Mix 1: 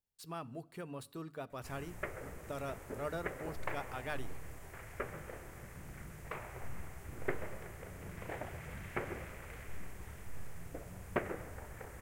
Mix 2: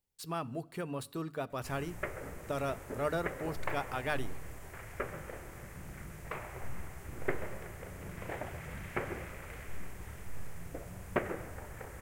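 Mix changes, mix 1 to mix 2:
speech +6.5 dB
background: send on

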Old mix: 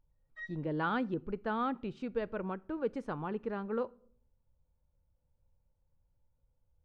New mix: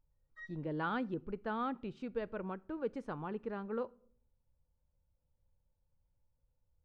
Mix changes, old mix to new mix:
speech −3.5 dB
background: add phaser with its sweep stopped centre 700 Hz, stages 6

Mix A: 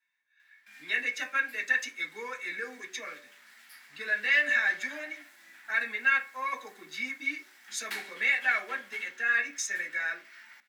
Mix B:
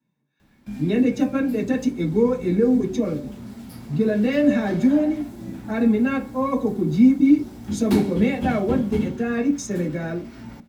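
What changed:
background +6.5 dB
master: remove high-pass with resonance 1,800 Hz, resonance Q 3.8

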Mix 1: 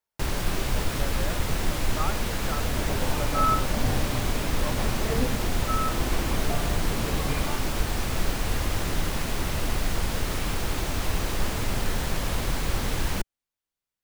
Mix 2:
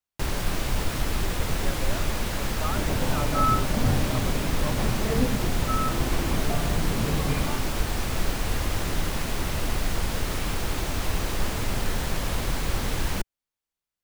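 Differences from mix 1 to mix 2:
speech: entry +0.65 s
second sound: add parametric band 150 Hz +6.5 dB 1.8 octaves

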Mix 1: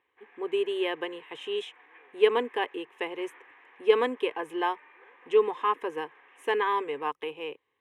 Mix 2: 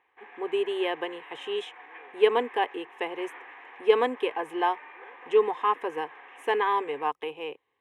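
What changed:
background +7.5 dB
master: add parametric band 750 Hz +6.5 dB 0.5 octaves

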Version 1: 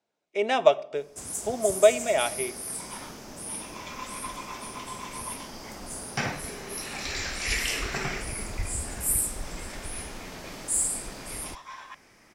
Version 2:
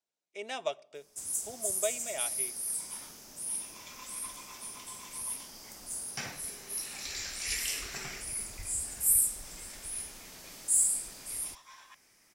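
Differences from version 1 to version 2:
speech: send −7.0 dB
master: add first-order pre-emphasis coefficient 0.8

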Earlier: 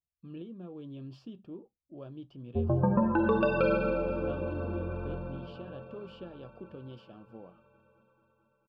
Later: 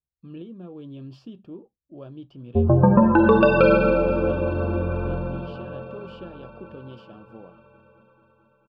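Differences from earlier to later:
speech +4.5 dB
background +10.5 dB

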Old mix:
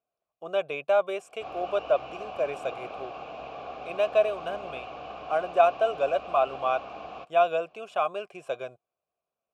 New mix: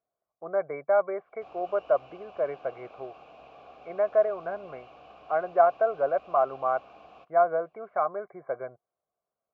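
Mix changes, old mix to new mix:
speech: add linear-phase brick-wall low-pass 2,300 Hz
background −11.0 dB

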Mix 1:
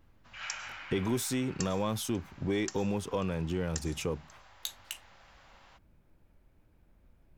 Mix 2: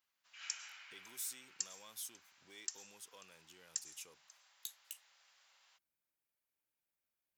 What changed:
speech −7.0 dB
master: add first difference

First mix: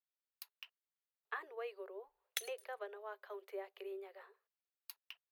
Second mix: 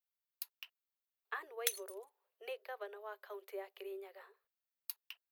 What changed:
background: entry −0.70 s
master: add high-shelf EQ 5,500 Hz +9.5 dB

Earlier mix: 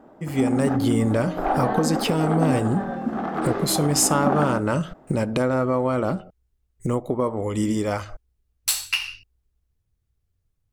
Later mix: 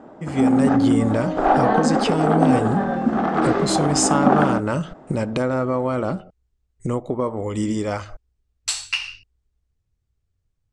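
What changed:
background +6.5 dB
master: add Butterworth low-pass 8,800 Hz 36 dB per octave

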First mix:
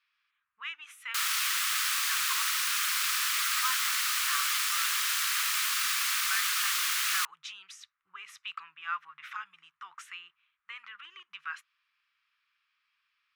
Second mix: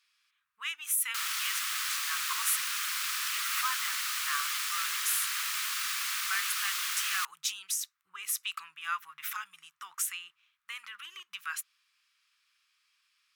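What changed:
speech: remove low-pass filter 2,600 Hz 12 dB per octave
background −4.0 dB

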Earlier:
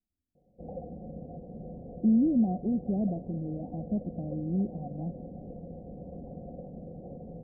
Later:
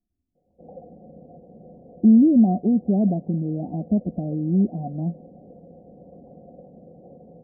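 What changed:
speech +9.5 dB
background: add high-pass filter 250 Hz 6 dB per octave

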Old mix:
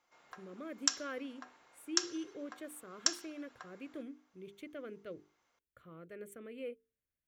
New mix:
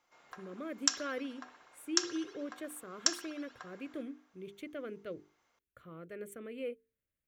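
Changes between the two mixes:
speech +3.5 dB
background: send +10.5 dB

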